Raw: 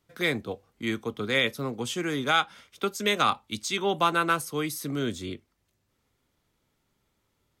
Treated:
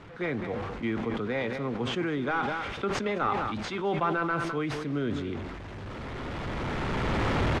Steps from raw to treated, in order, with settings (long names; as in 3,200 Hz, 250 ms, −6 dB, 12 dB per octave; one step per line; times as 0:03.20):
linear delta modulator 64 kbit/s, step −37 dBFS
camcorder AGC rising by 9.4 dB per second
low-pass filter 2,000 Hz 12 dB per octave
single-tap delay 208 ms −13.5 dB
level that may fall only so fast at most 28 dB per second
level −3 dB